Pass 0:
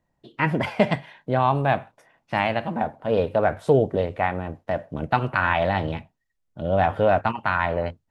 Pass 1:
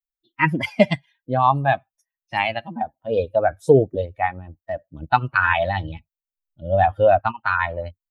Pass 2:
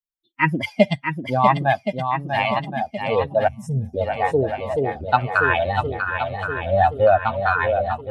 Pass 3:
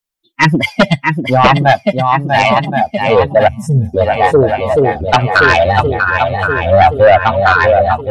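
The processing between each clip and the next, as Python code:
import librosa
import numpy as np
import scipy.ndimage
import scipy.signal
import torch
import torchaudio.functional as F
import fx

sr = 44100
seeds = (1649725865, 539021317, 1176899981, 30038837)

y1 = fx.bin_expand(x, sr, power=2.0)
y1 = fx.low_shelf(y1, sr, hz=340.0, db=-3.0)
y1 = F.gain(torch.from_numpy(y1), 8.0).numpy()
y2 = fx.noise_reduce_blind(y1, sr, reduce_db=7)
y2 = fx.echo_swing(y2, sr, ms=1072, ratio=1.5, feedback_pct=50, wet_db=-6.5)
y2 = fx.spec_box(y2, sr, start_s=3.48, length_s=0.46, low_hz=250.0, high_hz=5200.0, gain_db=-27)
y3 = fx.fold_sine(y2, sr, drive_db=9, ceiling_db=-1.0)
y3 = F.gain(torch.from_numpy(y3), -1.0).numpy()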